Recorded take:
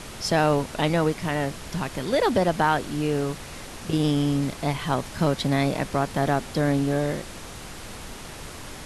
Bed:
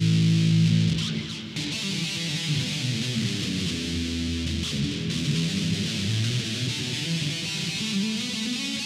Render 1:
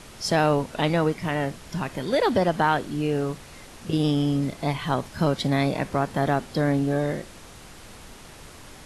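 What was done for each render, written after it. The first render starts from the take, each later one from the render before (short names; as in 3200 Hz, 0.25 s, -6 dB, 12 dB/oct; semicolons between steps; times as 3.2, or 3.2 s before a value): noise print and reduce 6 dB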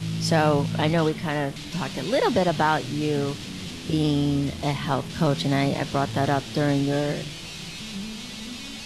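add bed -8 dB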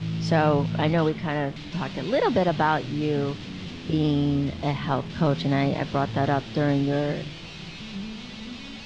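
air absorption 160 m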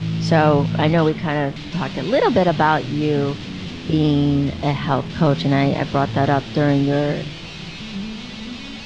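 gain +6 dB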